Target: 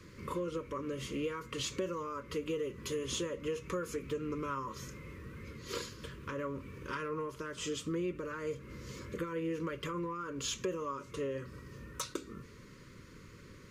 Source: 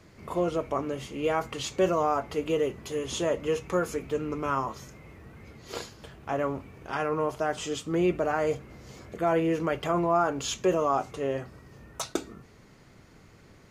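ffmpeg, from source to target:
-af "acompressor=threshold=-34dB:ratio=6,asoftclip=type=tanh:threshold=-22.5dB,asuperstop=centerf=740:order=12:qfactor=2,volume=1dB"

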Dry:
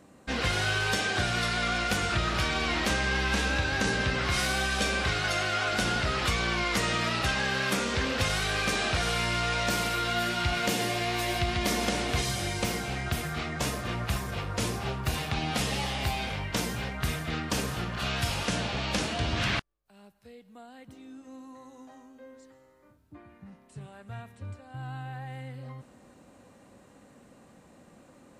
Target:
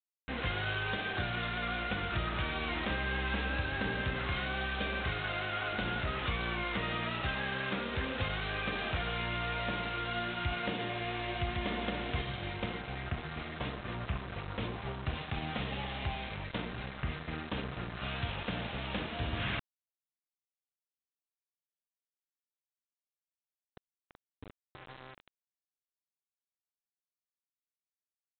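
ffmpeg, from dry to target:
-af "afwtdn=0.0112,lowshelf=f=95:g=2.5,aresample=8000,aeval=exprs='val(0)*gte(abs(val(0)),0.0224)':c=same,aresample=44100,volume=-6.5dB"

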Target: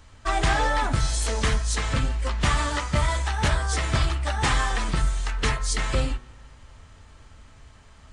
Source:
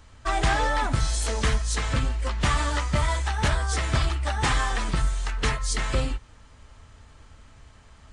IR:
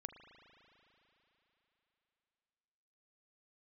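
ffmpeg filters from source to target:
-filter_complex "[0:a]bandreject=f=61.01:t=h:w=4,bandreject=f=122.02:t=h:w=4,bandreject=f=183.03:t=h:w=4,bandreject=f=244.04:t=h:w=4,bandreject=f=305.05:t=h:w=4,bandreject=f=366.06:t=h:w=4,bandreject=f=427.07:t=h:w=4,bandreject=f=488.08:t=h:w=4,bandreject=f=549.09:t=h:w=4,bandreject=f=610.1:t=h:w=4,bandreject=f=671.11:t=h:w=4,bandreject=f=732.12:t=h:w=4,bandreject=f=793.13:t=h:w=4,bandreject=f=854.14:t=h:w=4,bandreject=f=915.15:t=h:w=4,bandreject=f=976.16:t=h:w=4,bandreject=f=1.03717k:t=h:w=4,bandreject=f=1.09818k:t=h:w=4,bandreject=f=1.15919k:t=h:w=4,bandreject=f=1.2202k:t=h:w=4,bandreject=f=1.28121k:t=h:w=4,bandreject=f=1.34222k:t=h:w=4,bandreject=f=1.40323k:t=h:w=4,bandreject=f=1.46424k:t=h:w=4,bandreject=f=1.52525k:t=h:w=4,bandreject=f=1.58626k:t=h:w=4,bandreject=f=1.64727k:t=h:w=4,bandreject=f=1.70828k:t=h:w=4,asplit=2[a][b];[1:a]atrim=start_sample=2205[c];[b][c]afir=irnorm=-1:irlink=0,volume=-11.5dB[d];[a][d]amix=inputs=2:normalize=0"

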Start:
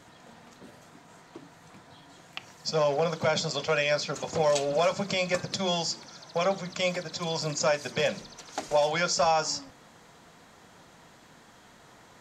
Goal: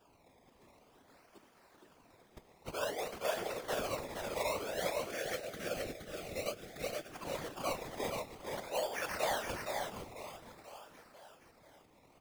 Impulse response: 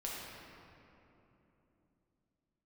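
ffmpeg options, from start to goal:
-filter_complex "[0:a]highpass=f=260:w=0.5412,highpass=f=260:w=1.3066,aecho=1:1:491|982|1473|1964|2455|2946:0.299|0.161|0.0871|0.047|0.0254|0.0137,acrusher=samples=21:mix=1:aa=0.000001:lfo=1:lforange=21:lforate=0.53,asettb=1/sr,asplit=3[a][b][c];[a]atrim=end=4.734[d];[b]atrim=start=4.73:end=7.1,asetpts=PTS-STARTPTS,afade=t=in:d=0.004:c=qsin,afade=t=out:st=2.366:d=0.004:c=qsin,asuperstop=centerf=950:order=4:qfactor=1.6[e];[c]atrim=start=7.096[f];[d][e]acrossfade=d=0.004:c1=hsin:c2=qsin[g];[g][f]acrossfade=d=0.004:c1=qsin:c2=hsin,aecho=1:1:469:0.596,afftfilt=real='hypot(re,im)*cos(2*PI*random(0))':imag='hypot(re,im)*sin(2*PI*random(1))':win_size=512:overlap=0.75,volume=-6dB"

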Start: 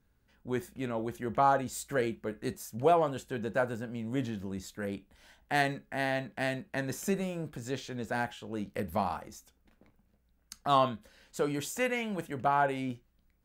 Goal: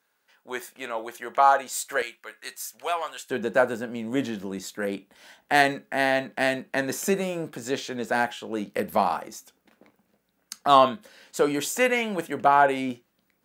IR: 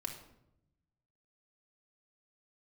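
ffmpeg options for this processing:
-af "asetnsamples=n=441:p=0,asendcmd='2.02 highpass f 1400;3.3 highpass f 250',highpass=690,volume=9dB"

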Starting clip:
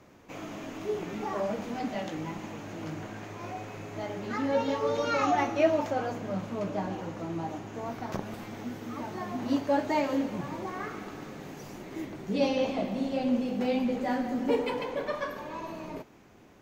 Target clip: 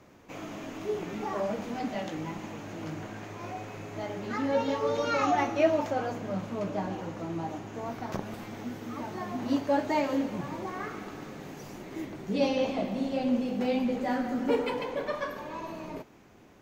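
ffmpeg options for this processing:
-filter_complex "[0:a]asettb=1/sr,asplit=3[a][b][c];[a]atrim=end=14.154[d];[b]atrim=start=14.15:end=14.69,asetpts=PTS-STARTPTS,afade=t=in:d=0.004:c=qsin,afade=t=out:st=0.536:d=0.004:c=qsin,equalizer=f=1.4k:w=4.3:g=7[e];[c]atrim=start=14.686[f];[d][e]acrossfade=d=0.004:c1=hsin:c2=qsin[g];[g][f]acrossfade=d=0.004:c1=qsin:c2=hsin"

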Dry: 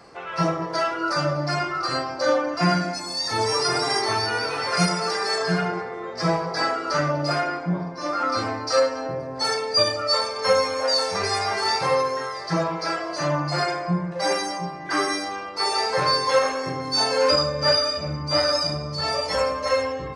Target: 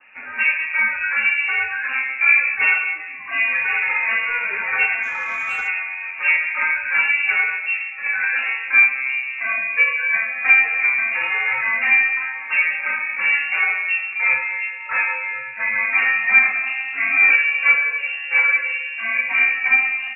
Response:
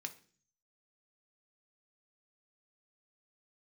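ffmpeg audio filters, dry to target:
-filter_complex "[0:a]adynamicequalizer=threshold=0.0158:dfrequency=630:dqfactor=1.2:tfrequency=630:tqfactor=1.2:attack=5:release=100:ratio=0.375:range=4:mode=boostabove:tftype=bell,lowpass=f=2.5k:t=q:w=0.5098,lowpass=f=2.5k:t=q:w=0.6013,lowpass=f=2.5k:t=q:w=0.9,lowpass=f=2.5k:t=q:w=2.563,afreqshift=-2900,asettb=1/sr,asplit=3[a][b][c];[a]atrim=end=5.034[d];[b]atrim=start=5.03:end=5.68,asetpts=PTS-STARTPTS,afade=t=in:d=0.004:c=qsin,afade=t=out:st=0.646:d=0.004:c=qsin,asplit=2[e][f];[f]highpass=f=720:p=1,volume=8dB,asoftclip=type=tanh:threshold=-12.5dB[g];[e][g]amix=inputs=2:normalize=0,lowpass=f=1.3k:p=1,volume=-6dB[h];[c]atrim=start=5.676[i];[d][h]acrossfade=d=0.004:c1=hsin:c2=qsin[j];[j][i]acrossfade=d=0.004:c1=qsin:c2=hsin"

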